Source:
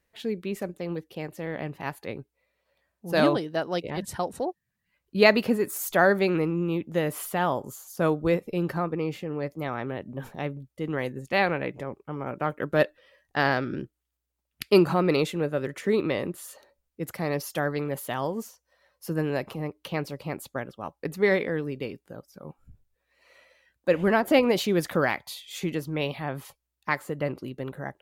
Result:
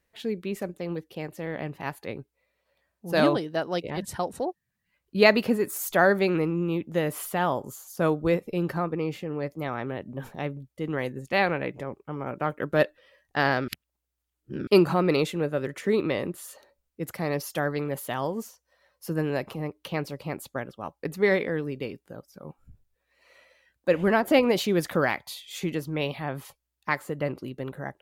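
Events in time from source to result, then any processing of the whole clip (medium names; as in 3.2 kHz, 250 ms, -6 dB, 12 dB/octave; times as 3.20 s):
13.68–14.67 s: reverse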